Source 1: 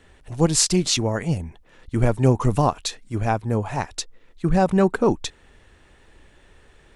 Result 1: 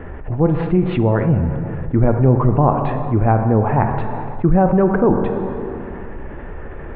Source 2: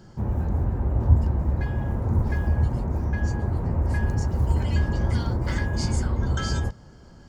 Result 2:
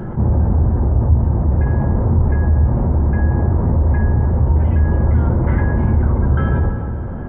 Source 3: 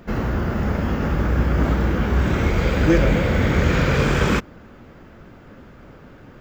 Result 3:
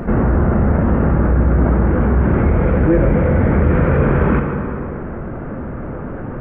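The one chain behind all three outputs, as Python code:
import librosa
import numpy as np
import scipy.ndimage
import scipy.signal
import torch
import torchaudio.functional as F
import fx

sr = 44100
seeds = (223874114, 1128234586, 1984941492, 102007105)

p1 = fx.rider(x, sr, range_db=10, speed_s=0.5)
p2 = x + (p1 * 10.0 ** (2.0 / 20.0))
p3 = scipy.ndimage.gaussian_filter1d(p2, 5.2, mode='constant')
p4 = fx.rev_plate(p3, sr, seeds[0], rt60_s=1.8, hf_ratio=0.75, predelay_ms=0, drr_db=8.0)
p5 = fx.env_flatten(p4, sr, amount_pct=50)
y = p5 * 10.0 ** (-4.0 / 20.0)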